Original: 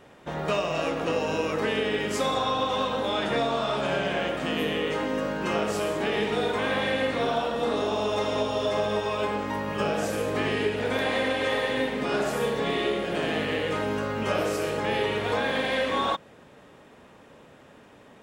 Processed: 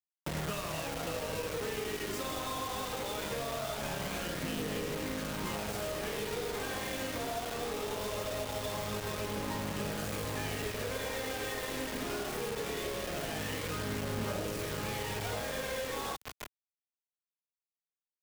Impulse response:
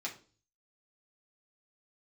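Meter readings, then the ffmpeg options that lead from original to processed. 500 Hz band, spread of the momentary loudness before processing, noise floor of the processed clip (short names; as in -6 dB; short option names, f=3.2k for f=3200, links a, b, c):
-11.5 dB, 2 LU, under -85 dBFS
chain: -filter_complex "[0:a]acrusher=bits=3:mode=log:mix=0:aa=0.000001,asplit=5[a][b][c][d][e];[b]adelay=157,afreqshift=-36,volume=-13dB[f];[c]adelay=314,afreqshift=-72,volume=-19.9dB[g];[d]adelay=471,afreqshift=-108,volume=-26.9dB[h];[e]adelay=628,afreqshift=-144,volume=-33.8dB[i];[a][f][g][h][i]amix=inputs=5:normalize=0,aphaser=in_gain=1:out_gain=1:delay=3.2:decay=0.4:speed=0.21:type=triangular,acompressor=threshold=-39dB:ratio=2,highshelf=f=2.1k:g=-2.5,acrusher=bits=5:mix=0:aa=0.000001,acrossover=split=150[j][k];[k]acompressor=threshold=-43dB:ratio=2[l];[j][l]amix=inputs=2:normalize=0,volume=3.5dB"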